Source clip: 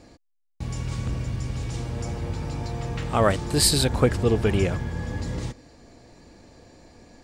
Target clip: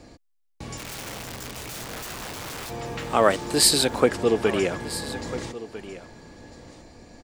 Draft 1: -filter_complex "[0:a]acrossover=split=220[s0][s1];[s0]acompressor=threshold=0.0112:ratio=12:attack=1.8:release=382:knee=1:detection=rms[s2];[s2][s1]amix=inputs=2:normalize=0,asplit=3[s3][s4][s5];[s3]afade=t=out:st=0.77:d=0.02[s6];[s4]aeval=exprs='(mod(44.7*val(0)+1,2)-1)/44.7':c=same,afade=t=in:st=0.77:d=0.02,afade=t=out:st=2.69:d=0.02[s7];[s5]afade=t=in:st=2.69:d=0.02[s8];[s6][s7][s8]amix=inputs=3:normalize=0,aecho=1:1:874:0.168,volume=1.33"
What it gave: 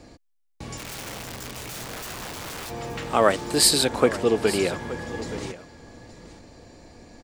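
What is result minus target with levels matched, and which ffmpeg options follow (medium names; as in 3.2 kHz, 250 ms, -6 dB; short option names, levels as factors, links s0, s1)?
echo 425 ms early
-filter_complex "[0:a]acrossover=split=220[s0][s1];[s0]acompressor=threshold=0.0112:ratio=12:attack=1.8:release=382:knee=1:detection=rms[s2];[s2][s1]amix=inputs=2:normalize=0,asplit=3[s3][s4][s5];[s3]afade=t=out:st=0.77:d=0.02[s6];[s4]aeval=exprs='(mod(44.7*val(0)+1,2)-1)/44.7':c=same,afade=t=in:st=0.77:d=0.02,afade=t=out:st=2.69:d=0.02[s7];[s5]afade=t=in:st=2.69:d=0.02[s8];[s6][s7][s8]amix=inputs=3:normalize=0,aecho=1:1:1299:0.168,volume=1.33"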